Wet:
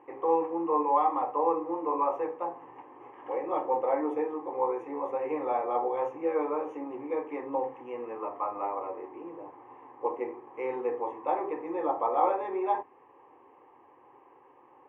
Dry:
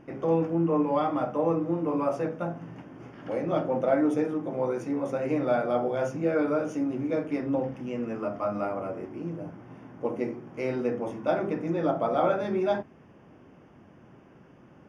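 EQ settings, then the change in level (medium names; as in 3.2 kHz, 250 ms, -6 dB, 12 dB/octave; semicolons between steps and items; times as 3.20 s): band-pass filter 920 Hz, Q 1.1; peaking EQ 810 Hz +7 dB 2 oct; static phaser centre 960 Hz, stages 8; +1.5 dB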